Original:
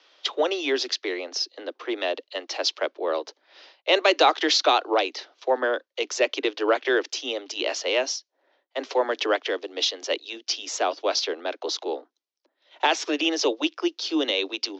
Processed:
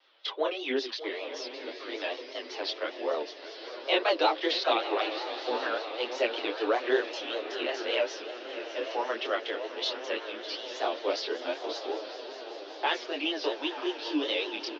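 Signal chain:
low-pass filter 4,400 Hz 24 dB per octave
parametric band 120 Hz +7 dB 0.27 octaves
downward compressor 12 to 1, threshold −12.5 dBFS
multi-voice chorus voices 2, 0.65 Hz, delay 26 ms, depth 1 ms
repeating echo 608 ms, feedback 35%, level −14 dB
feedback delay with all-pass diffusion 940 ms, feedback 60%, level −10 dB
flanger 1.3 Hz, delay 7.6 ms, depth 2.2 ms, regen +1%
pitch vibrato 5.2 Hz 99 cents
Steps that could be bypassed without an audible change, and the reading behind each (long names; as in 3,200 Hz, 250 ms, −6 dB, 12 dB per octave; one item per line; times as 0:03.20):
parametric band 120 Hz: nothing at its input below 230 Hz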